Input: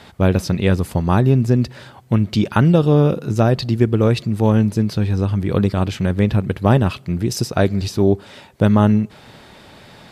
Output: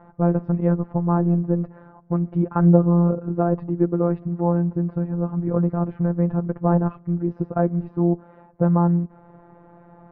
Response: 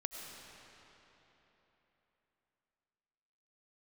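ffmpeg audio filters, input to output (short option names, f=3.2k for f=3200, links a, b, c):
-af "afftfilt=real='hypot(re,im)*cos(PI*b)':imag='0':win_size=1024:overlap=0.75,lowpass=f=1.2k:w=0.5412,lowpass=f=1.2k:w=1.3066"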